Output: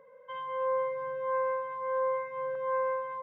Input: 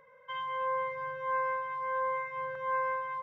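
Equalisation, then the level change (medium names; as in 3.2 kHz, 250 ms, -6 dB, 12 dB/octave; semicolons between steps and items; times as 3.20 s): ten-band graphic EQ 250 Hz +11 dB, 500 Hz +11 dB, 1 kHz +3 dB; -7.0 dB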